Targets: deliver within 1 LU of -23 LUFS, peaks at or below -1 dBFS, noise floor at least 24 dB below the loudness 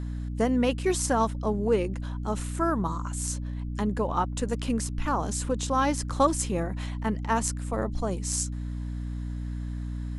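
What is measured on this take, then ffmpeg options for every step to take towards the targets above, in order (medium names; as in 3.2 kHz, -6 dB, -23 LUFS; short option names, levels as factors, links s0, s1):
hum 60 Hz; highest harmonic 300 Hz; hum level -30 dBFS; loudness -28.5 LUFS; peak level -10.5 dBFS; loudness target -23.0 LUFS
-> -af "bandreject=f=60:t=h:w=6,bandreject=f=120:t=h:w=6,bandreject=f=180:t=h:w=6,bandreject=f=240:t=h:w=6,bandreject=f=300:t=h:w=6"
-af "volume=1.88"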